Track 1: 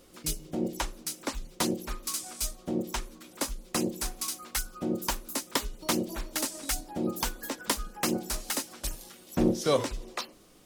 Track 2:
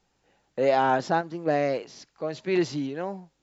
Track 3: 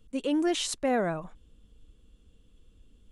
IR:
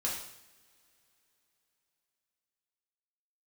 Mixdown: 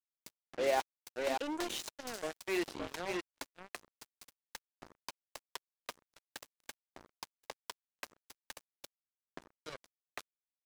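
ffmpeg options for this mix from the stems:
-filter_complex "[0:a]agate=range=-33dB:threshold=-40dB:ratio=3:detection=peak,acompressor=threshold=-36dB:ratio=16,volume=-3dB,asplit=2[link_01][link_02];[link_02]volume=-20.5dB[link_03];[1:a]adynamicequalizer=threshold=0.01:dfrequency=2600:dqfactor=0.78:tfrequency=2600:tqfactor=0.78:attack=5:release=100:ratio=0.375:range=2.5:mode=boostabove:tftype=bell,aeval=exprs='val(0)+0.00708*(sin(2*PI*50*n/s)+sin(2*PI*2*50*n/s)/2+sin(2*PI*3*50*n/s)/3+sin(2*PI*4*50*n/s)/4+sin(2*PI*5*50*n/s)/5)':channel_layout=same,volume=-9dB,asplit=3[link_04][link_05][link_06];[link_04]atrim=end=0.8,asetpts=PTS-STARTPTS,afade=type=out:start_time=0.796:duration=0.004:curve=hsin[link_07];[link_05]atrim=start=0.8:end=1.95,asetpts=PTS-STARTPTS,volume=0[link_08];[link_06]atrim=start=1.95,asetpts=PTS-STARTPTS,afade=type=in:duration=0.004:curve=hsin[link_09];[link_07][link_08][link_09]concat=n=3:v=0:a=1,asplit=3[link_10][link_11][link_12];[link_11]volume=-5dB[link_13];[2:a]equalizer=frequency=7000:width_type=o:width=0.45:gain=5,acrossover=split=280|3000[link_14][link_15][link_16];[link_15]acompressor=threshold=-29dB:ratio=6[link_17];[link_14][link_17][link_16]amix=inputs=3:normalize=0,adelay=1150,volume=-7.5dB[link_18];[link_12]apad=whole_len=187966[link_19];[link_18][link_19]sidechaincompress=threshold=-54dB:ratio=8:attack=24:release=107[link_20];[link_03][link_13]amix=inputs=2:normalize=0,aecho=0:1:577:1[link_21];[link_01][link_10][link_20][link_21]amix=inputs=4:normalize=0,acrossover=split=280 6200:gain=0.0891 1 0.224[link_22][link_23][link_24];[link_22][link_23][link_24]amix=inputs=3:normalize=0,bandreject=frequency=1300:width=18,acrusher=bits=5:mix=0:aa=0.5"

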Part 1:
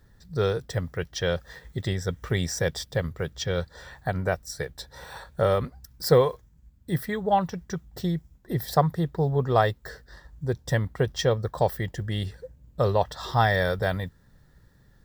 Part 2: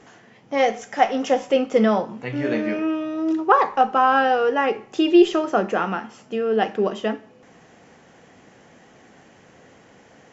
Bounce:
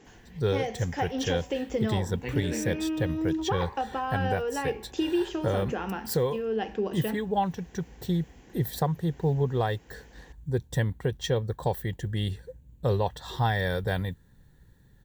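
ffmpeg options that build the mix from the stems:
ffmpeg -i stem1.wav -i stem2.wav -filter_complex "[0:a]equalizer=frequency=5100:width=5.3:gain=-11.5,adelay=50,volume=0dB[link_01];[1:a]acompressor=threshold=-20dB:ratio=6,volume=-3.5dB[link_02];[link_01][link_02]amix=inputs=2:normalize=0,equalizer=frequency=630:width_type=o:width=0.33:gain=-9,equalizer=frequency=1250:width_type=o:width=0.33:gain=-11,equalizer=frequency=2000:width_type=o:width=0.33:gain=-3,alimiter=limit=-15.5dB:level=0:latency=1:release=420" out.wav

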